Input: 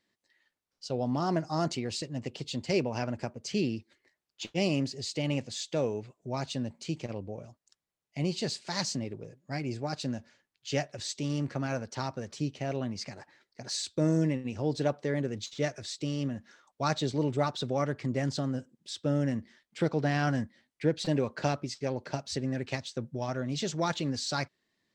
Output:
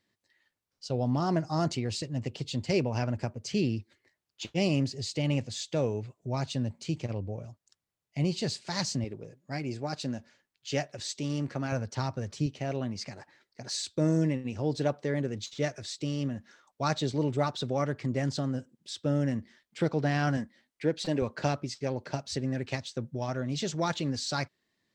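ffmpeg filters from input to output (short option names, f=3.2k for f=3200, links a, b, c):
-af "asetnsamples=n=441:p=0,asendcmd='9.04 equalizer g -1;11.72 equalizer g 9;12.46 equalizer g 2;20.37 equalizer g -8;21.22 equalizer g 2.5',equalizer=f=100:t=o:w=1.1:g=8"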